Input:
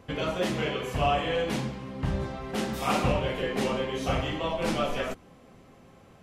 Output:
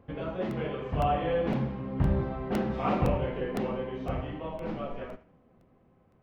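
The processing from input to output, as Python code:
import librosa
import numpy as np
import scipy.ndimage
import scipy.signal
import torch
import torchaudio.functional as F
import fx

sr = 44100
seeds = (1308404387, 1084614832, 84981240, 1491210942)

y = fx.doppler_pass(x, sr, speed_mps=8, closest_m=8.0, pass_at_s=2.08)
y = fx.spacing_loss(y, sr, db_at_10k=43)
y = fx.echo_thinned(y, sr, ms=77, feedback_pct=32, hz=420.0, wet_db=-14)
y = fx.buffer_crackle(y, sr, first_s=0.51, period_s=0.51, block=64, kind='repeat')
y = F.gain(torch.from_numpy(y), 4.0).numpy()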